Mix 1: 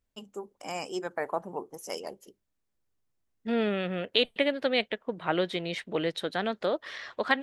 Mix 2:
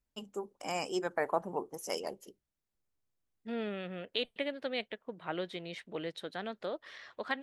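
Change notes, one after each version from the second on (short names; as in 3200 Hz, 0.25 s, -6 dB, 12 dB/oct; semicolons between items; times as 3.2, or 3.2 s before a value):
second voice -9.5 dB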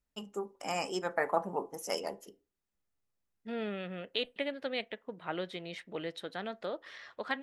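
reverb: on, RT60 0.30 s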